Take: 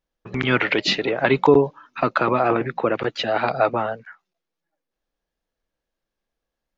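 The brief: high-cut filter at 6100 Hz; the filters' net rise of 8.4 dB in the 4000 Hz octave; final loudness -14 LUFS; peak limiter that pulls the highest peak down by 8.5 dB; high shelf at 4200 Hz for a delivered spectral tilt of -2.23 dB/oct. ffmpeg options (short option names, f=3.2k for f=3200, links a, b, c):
-af "lowpass=6.1k,equalizer=f=4k:t=o:g=7,highshelf=f=4.2k:g=7.5,volume=7dB,alimiter=limit=-0.5dB:level=0:latency=1"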